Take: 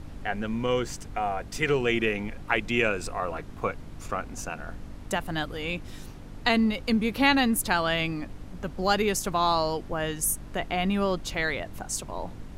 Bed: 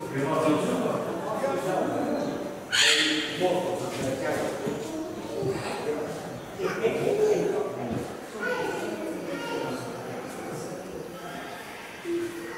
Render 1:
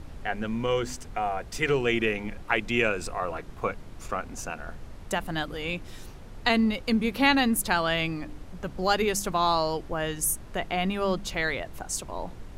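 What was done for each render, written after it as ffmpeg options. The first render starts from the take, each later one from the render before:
-af "bandreject=f=50:t=h:w=4,bandreject=f=100:t=h:w=4,bandreject=f=150:t=h:w=4,bandreject=f=200:t=h:w=4,bandreject=f=250:t=h:w=4,bandreject=f=300:t=h:w=4"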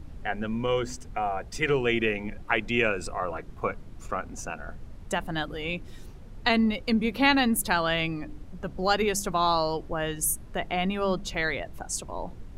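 -af "afftdn=nr=7:nf=-43"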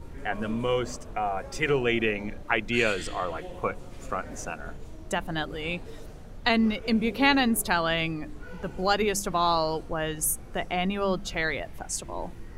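-filter_complex "[1:a]volume=0.133[s0];[0:a][s0]amix=inputs=2:normalize=0"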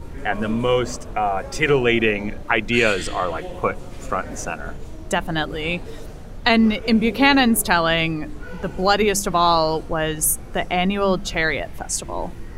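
-af "volume=2.37,alimiter=limit=0.708:level=0:latency=1"

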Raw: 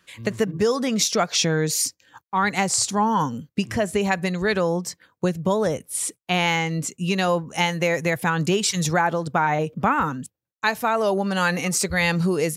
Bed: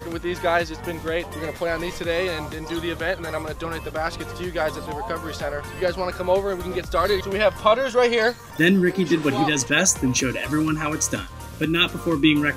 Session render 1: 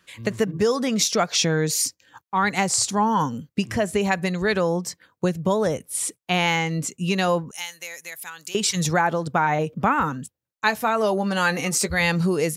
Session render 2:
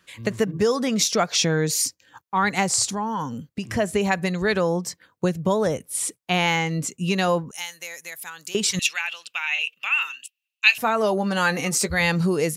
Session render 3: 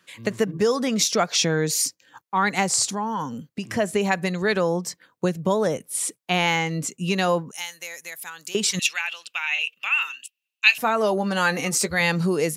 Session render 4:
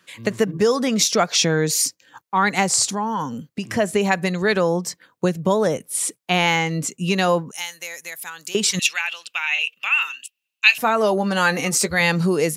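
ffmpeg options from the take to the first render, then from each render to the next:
-filter_complex "[0:a]asettb=1/sr,asplit=3[s0][s1][s2];[s0]atrim=end=7.514[s3];[s1]atrim=start=7.51:end=8.55,asetpts=PTS-STARTPTS,afade=t=in:d=0.004:c=qsin,afade=t=out:st=1.036:d=0.004:c=qsin,aderivative[s4];[s2]atrim=start=8.546[s5];[s3][s4]acrossfade=d=0.004:c1=hsin:c2=qsin[s6];[s6][s5]acrossfade=d=0.004:c1=qsin:c2=hsin,asettb=1/sr,asplit=3[s7][s8][s9];[s7]atrim=end=10.124[s10];[s8]atrim=start=10.12:end=12,asetpts=PTS-STARTPTS,afade=t=in:d=0.004:c=qsin,afade=t=out:st=1.876:d=0.004:c=qsin,asplit=2[s11][s12];[s12]adelay=14,volume=0.282[s13];[s11][s13]amix=inputs=2:normalize=0,atrim=end_sample=82908[s14];[s9]atrim=start=11.996[s15];[s10][s14]acrossfade=d=0.004:c1=hsin:c2=qsin[s16];[s16][s15]acrossfade=d=0.004:c1=qsin:c2=hsin"
-filter_complex "[0:a]asettb=1/sr,asplit=3[s0][s1][s2];[s0]atrim=end=2.934[s3];[s1]atrim=start=2.93:end=3.65,asetpts=PTS-STARTPTS,afade=t=in:d=0.004:c=qsin,afade=t=out:st=0.716:d=0.004:c=qsin,acompressor=threshold=0.0398:ratio=2:attack=3.2:release=140:knee=1:detection=peak[s4];[s2]atrim=start=3.646[s5];[s3][s4]acrossfade=d=0.004:c1=hsin:c2=qsin[s6];[s6][s5]acrossfade=d=0.004:c1=qsin:c2=hsin,asettb=1/sr,asplit=3[s7][s8][s9];[s7]atrim=end=8.794[s10];[s8]atrim=start=8.79:end=10.78,asetpts=PTS-STARTPTS,afade=t=in:d=0.004:c=qsin,afade=t=out:st=1.986:d=0.004:c=qsin,highpass=f=2700:t=q:w=16[s11];[s9]atrim=start=10.776[s12];[s10][s11]acrossfade=d=0.004:c1=hsin:c2=qsin[s13];[s13][s12]acrossfade=d=0.004:c1=qsin:c2=hsin"
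-af "highpass=140"
-af "volume=1.41,alimiter=limit=0.891:level=0:latency=1"

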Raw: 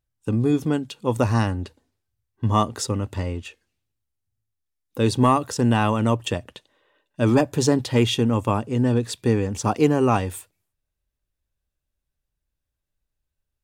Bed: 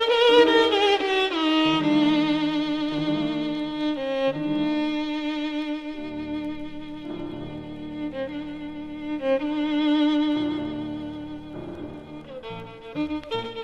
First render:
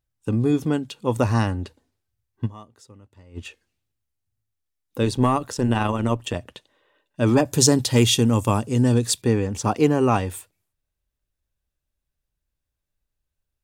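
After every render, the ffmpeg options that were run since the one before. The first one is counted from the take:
-filter_complex "[0:a]asettb=1/sr,asplit=3[s0][s1][s2];[s0]atrim=end=5.034[s3];[s1]atrim=start=5.03:end=6.36,asetpts=PTS-STARTPTS,afade=t=in:d=0.004:c=qsin,afade=t=out:st=1.326:d=0.004:c=qsin,tremolo=f=130:d=0.519[s4];[s2]atrim=start=6.356[s5];[s3][s4]acrossfade=d=0.004:c1=hsin:c2=qsin[s6];[s6][s5]acrossfade=d=0.004:c1=qsin:c2=hsin,asettb=1/sr,asplit=3[s7][s8][s9];[s7]atrim=end=7.454[s10];[s8]atrim=start=7.45:end=9.22,asetpts=PTS-STARTPTS,afade=t=in:d=0.004:c=qsin,afade=t=out:st=1.766:d=0.004:c=qsin,bass=f=250:g=3,treble=f=4000:g=12[s11];[s9]atrim=start=9.216[s12];[s10][s11]acrossfade=d=0.004:c1=hsin:c2=qsin[s13];[s13][s12]acrossfade=d=0.004:c1=qsin:c2=hsin,asplit=3[s14][s15][s16];[s14]atrim=end=2.66,asetpts=PTS-STARTPTS,afade=t=out:st=2.45:d=0.21:c=exp:silence=0.0707946[s17];[s15]atrim=start=2.66:end=3.17,asetpts=PTS-STARTPTS,volume=0.0708[s18];[s16]atrim=start=3.17,asetpts=PTS-STARTPTS,afade=t=in:d=0.21:c=exp:silence=0.0707946[s19];[s17][s18][s19]concat=n=3:v=0:a=1"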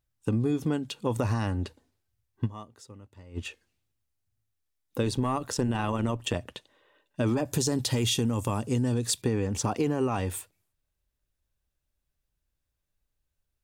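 -af "alimiter=limit=0.266:level=0:latency=1:release=14,acompressor=threshold=0.0708:ratio=6"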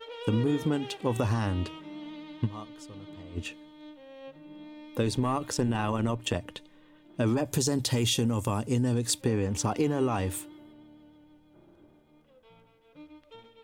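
-filter_complex "[1:a]volume=0.0794[s0];[0:a][s0]amix=inputs=2:normalize=0"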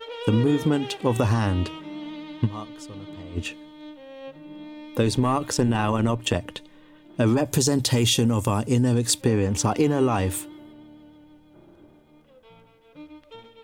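-af "volume=2"

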